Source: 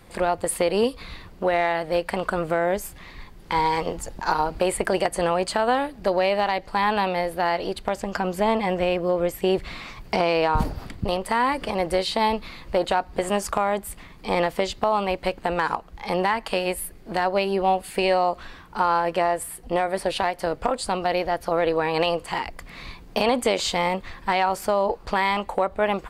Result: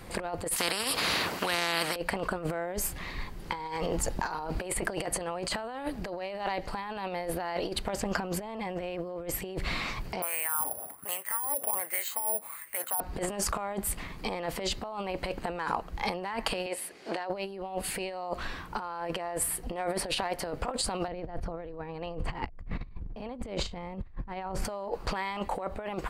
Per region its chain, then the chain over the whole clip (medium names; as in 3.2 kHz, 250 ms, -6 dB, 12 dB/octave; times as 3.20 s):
0.56–1.96 s: high-pass 300 Hz + spectrum-flattening compressor 4:1
10.22–13.00 s: high-pass 47 Hz + wah-wah 1.3 Hz 610–2100 Hz, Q 4.1 + careless resampling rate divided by 4×, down none, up zero stuff
16.66–17.30 s: band-pass 390–6400 Hz + peaking EQ 1.2 kHz -3.5 dB 0.97 oct + tape noise reduction on one side only encoder only
21.08–24.65 s: RIAA curve playback + tape noise reduction on one side only decoder only
whole clip: band-stop 3.5 kHz, Q 25; peak limiter -18.5 dBFS; compressor with a negative ratio -32 dBFS, ratio -0.5